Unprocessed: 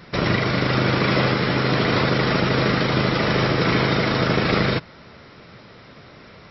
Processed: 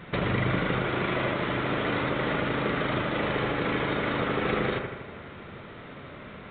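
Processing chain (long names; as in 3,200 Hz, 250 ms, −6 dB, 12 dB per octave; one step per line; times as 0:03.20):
downward compressor 4 to 1, threshold −26 dBFS, peak gain reduction 10 dB
on a send: delay with a low-pass on its return 80 ms, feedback 62%, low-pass 2,100 Hz, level −4 dB
on the sum: mu-law 64 kbit/s 8,000 Hz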